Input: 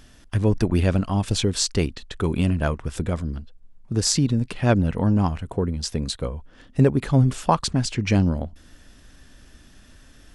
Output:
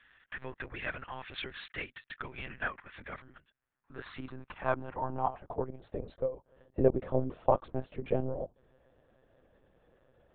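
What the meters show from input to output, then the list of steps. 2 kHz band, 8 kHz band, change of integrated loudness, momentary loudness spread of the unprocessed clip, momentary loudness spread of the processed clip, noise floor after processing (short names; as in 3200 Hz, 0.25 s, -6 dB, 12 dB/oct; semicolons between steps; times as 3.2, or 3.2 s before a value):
-5.5 dB, under -40 dB, -13.0 dB, 9 LU, 16 LU, -79 dBFS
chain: band-pass sweep 1800 Hz -> 530 Hz, 3.48–6.2; monotone LPC vocoder at 8 kHz 130 Hz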